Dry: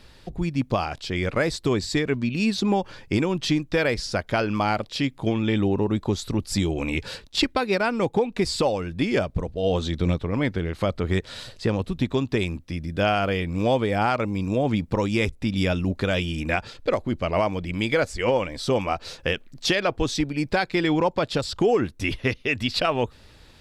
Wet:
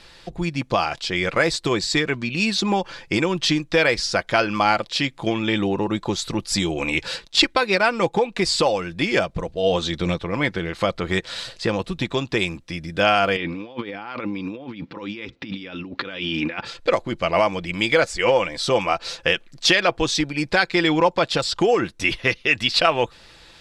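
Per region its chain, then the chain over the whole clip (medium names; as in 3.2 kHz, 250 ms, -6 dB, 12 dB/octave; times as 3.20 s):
13.36–16.65 s: compressor with a negative ratio -29 dBFS, ratio -0.5 + cabinet simulation 130–4200 Hz, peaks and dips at 170 Hz -4 dB, 270 Hz +8 dB, 660 Hz -7 dB
whole clip: low-pass 9.1 kHz 12 dB/octave; bass shelf 450 Hz -10.5 dB; comb 5.9 ms, depth 35%; trim +7 dB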